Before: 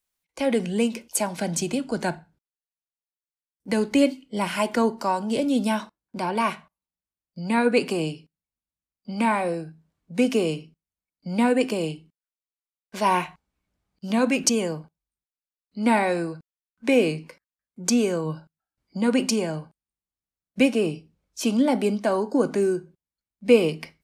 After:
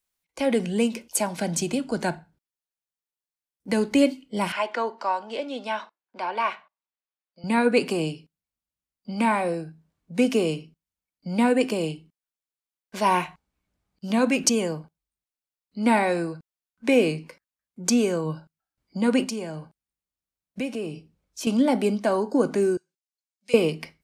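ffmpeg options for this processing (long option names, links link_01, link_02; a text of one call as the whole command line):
ffmpeg -i in.wav -filter_complex "[0:a]asettb=1/sr,asplit=3[link_01][link_02][link_03];[link_01]atrim=end=4.524[link_04];[link_02]atrim=start=4.52:end=7.44,asetpts=PTS-STARTPTS,afade=type=in:duration=0.004:curve=qsin,afade=type=out:start_time=2.916:duration=0.004:curve=qsin,highpass=580,lowpass=3600[link_05];[link_03]atrim=start=7.436[link_06];[link_04][link_05]acrossfade=duration=0.004:curve1=hsin:curve2=qsin[link_07];[link_07][link_06]acrossfade=duration=0.004:curve1=qsin:curve2=hsin,asettb=1/sr,asplit=3[link_08][link_09][link_10];[link_08]atrim=end=19.244[link_11];[link_09]atrim=start=19.24:end=21.47,asetpts=PTS-STARTPTS,afade=type=in:duration=0.004:curve=qsin,afade=type=out:start_time=2.226:duration=0.004:curve=qsin,acompressor=threshold=-33dB:ratio=2:attack=3.2:release=140:knee=1:detection=peak[link_12];[link_10]atrim=start=21.466[link_13];[link_11][link_12]acrossfade=duration=0.004:curve1=hsin:curve2=qsin[link_14];[link_14][link_13]acrossfade=duration=0.004:curve1=qsin:curve2=hsin,asettb=1/sr,asplit=3[link_15][link_16][link_17];[link_15]atrim=end=22.774[link_18];[link_16]atrim=start=22.77:end=23.54,asetpts=PTS-STARTPTS,afade=type=in:duration=0.004:curve=qsin,afade=type=out:start_time=0.766:duration=0.004:curve=qsin,bandpass=frequency=6300:width_type=q:width=1.2[link_19];[link_17]atrim=start=23.536[link_20];[link_18][link_19]acrossfade=duration=0.004:curve1=hsin:curve2=qsin[link_21];[link_21][link_20]acrossfade=duration=0.004:curve1=qsin:curve2=hsin" out.wav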